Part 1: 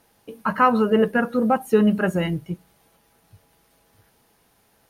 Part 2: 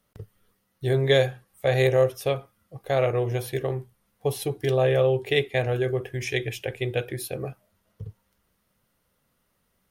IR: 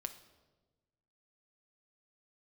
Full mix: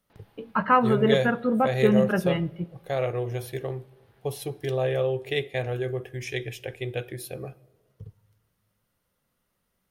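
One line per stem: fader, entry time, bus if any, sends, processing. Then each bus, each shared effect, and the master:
+1.0 dB, 0.10 s, send −13 dB, low-pass filter 3,900 Hz 24 dB per octave; automatic ducking −7 dB, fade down 0.90 s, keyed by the second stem
−7.5 dB, 0.00 s, send −5 dB, no processing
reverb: on, RT60 1.2 s, pre-delay 6 ms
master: no processing

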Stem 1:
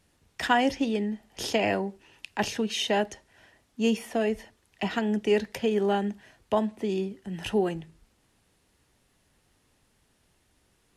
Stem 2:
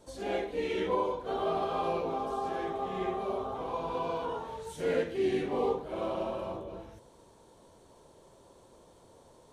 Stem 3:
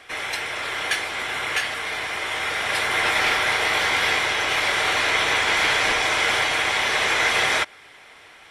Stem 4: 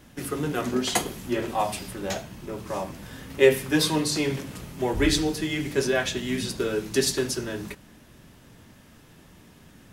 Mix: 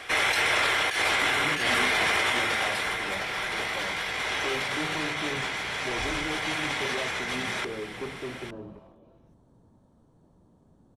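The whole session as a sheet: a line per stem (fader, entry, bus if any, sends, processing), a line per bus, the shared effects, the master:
muted
−17.0 dB, 2.35 s, no send, asymmetric clip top −34.5 dBFS
0.0 dB, 0.00 s, no send, compressor whose output falls as the input rises −29 dBFS, ratio −1
−8.0 dB, 1.05 s, no send, low-pass filter 1,000 Hz 24 dB per octave; hard clipping −23 dBFS, distortion −7 dB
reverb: not used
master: no processing

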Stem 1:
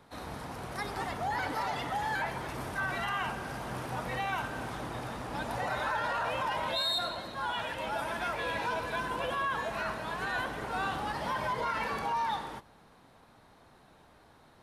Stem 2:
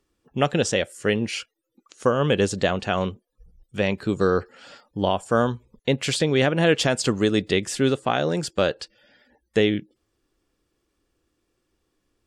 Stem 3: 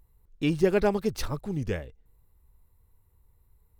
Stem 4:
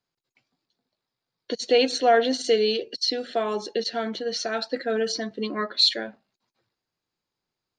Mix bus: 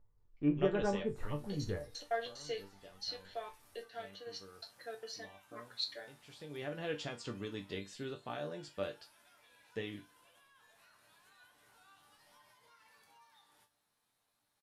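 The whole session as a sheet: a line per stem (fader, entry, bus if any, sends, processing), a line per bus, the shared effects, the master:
+1.5 dB, 1.05 s, no send, first-order pre-emphasis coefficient 0.9; downward compressor 5 to 1, threshold −54 dBFS, peak gain reduction 18 dB
−9.0 dB, 0.20 s, no send, low-pass filter 5,800 Hz 12 dB per octave; automatic ducking −16 dB, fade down 0.35 s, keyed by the fourth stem
+2.5 dB, 0.00 s, no send, low-pass filter 1,800 Hz 24 dB per octave
−5.5 dB, 0.00 s, no send, high-pass filter 470 Hz 12 dB per octave; gate pattern "..x.xx.xxx." 185 BPM −60 dB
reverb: not used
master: resonators tuned to a chord G2 minor, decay 0.22 s

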